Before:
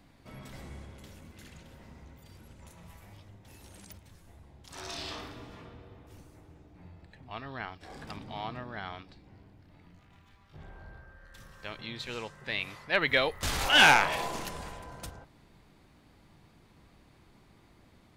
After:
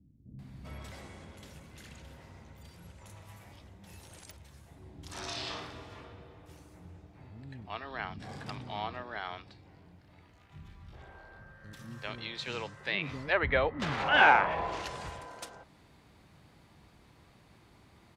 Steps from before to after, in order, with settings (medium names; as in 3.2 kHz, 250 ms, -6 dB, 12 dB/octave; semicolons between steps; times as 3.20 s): low-pass that closes with the level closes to 1.6 kHz, closed at -26 dBFS; high-pass 52 Hz; bands offset in time lows, highs 390 ms, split 280 Hz; trim +1.5 dB